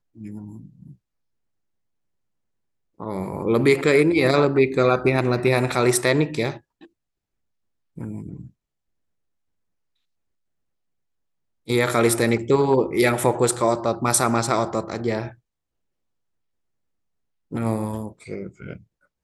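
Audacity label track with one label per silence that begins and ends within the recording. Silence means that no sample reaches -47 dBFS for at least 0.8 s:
0.950000	2.980000	silence
6.860000	7.970000	silence
8.500000	11.670000	silence
15.350000	17.510000	silence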